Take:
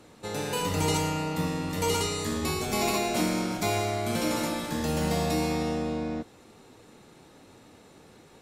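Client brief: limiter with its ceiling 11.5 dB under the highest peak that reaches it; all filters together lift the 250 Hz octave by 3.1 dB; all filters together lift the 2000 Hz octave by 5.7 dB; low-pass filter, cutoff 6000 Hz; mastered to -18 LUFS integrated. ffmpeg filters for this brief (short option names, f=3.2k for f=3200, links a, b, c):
-af "lowpass=6k,equalizer=f=250:t=o:g=4,equalizer=f=2k:t=o:g=7,volume=14dB,alimiter=limit=-9.5dB:level=0:latency=1"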